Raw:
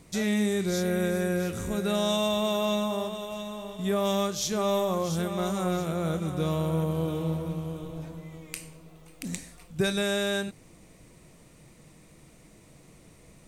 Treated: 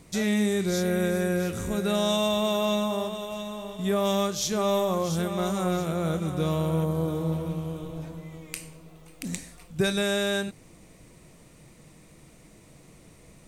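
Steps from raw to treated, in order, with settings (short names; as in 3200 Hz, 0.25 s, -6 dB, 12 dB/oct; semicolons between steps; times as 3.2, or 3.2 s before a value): 6.85–7.32 bell 2800 Hz -9 dB 0.52 oct; gain +1.5 dB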